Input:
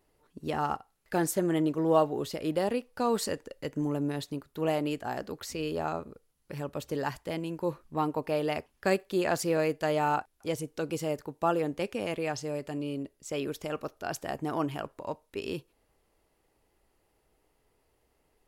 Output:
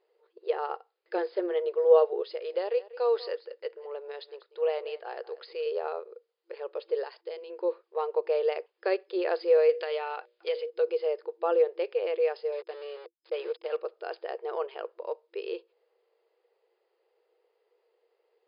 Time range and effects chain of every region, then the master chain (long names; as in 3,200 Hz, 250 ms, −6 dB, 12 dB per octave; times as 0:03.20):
0:02.22–0:05.66: high-pass filter 550 Hz 6 dB per octave + single-tap delay 192 ms −17.5 dB
0:07.04–0:07.50: noise gate −56 dBFS, range −11 dB + bass and treble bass +3 dB, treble +12 dB + downward compressor 2 to 1, threshold −39 dBFS
0:09.69–0:10.70: parametric band 3,100 Hz +10.5 dB 2.4 octaves + mains-hum notches 60/120/180/240/300/360/420/480/540/600 Hz + downward compressor 10 to 1, threshold −27 dBFS
0:12.52–0:13.77: centre clipping without the shift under −39.5 dBFS + notch filter 400 Hz, Q 8.4
whole clip: brick-wall band-pass 340–5,100 Hz; parametric band 480 Hz +14.5 dB 0.3 octaves; level −4 dB